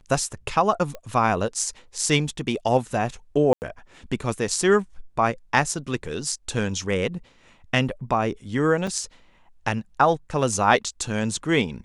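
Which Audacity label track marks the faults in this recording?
0.950000	0.950000	click −21 dBFS
3.530000	3.620000	drop-out 89 ms
8.870000	8.870000	drop-out 4.9 ms

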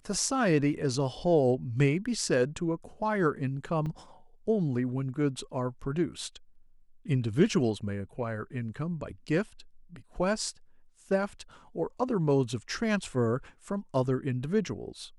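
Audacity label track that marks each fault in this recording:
3.860000	3.860000	drop-out 4.7 ms

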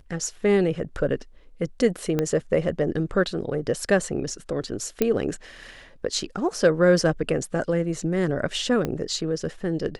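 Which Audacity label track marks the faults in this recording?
2.190000	2.190000	click −11 dBFS
5.020000	5.020000	click −7 dBFS
8.850000	8.850000	click −13 dBFS

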